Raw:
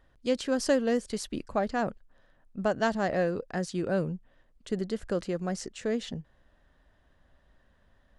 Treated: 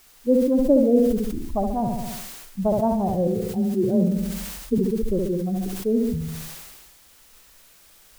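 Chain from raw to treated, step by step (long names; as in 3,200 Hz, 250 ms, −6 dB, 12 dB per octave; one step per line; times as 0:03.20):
spectral dynamics exaggerated over time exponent 2
elliptic low-pass filter 940 Hz, stop band 80 dB
spectral tilt −3 dB per octave
0:03.27–0:04.78: frequency shifter +24 Hz
bit-depth reduction 10 bits, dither triangular
on a send: flutter between parallel walls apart 11.7 metres, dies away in 0.6 s
on the sum: level that may fall only so fast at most 34 dB per second
level +6 dB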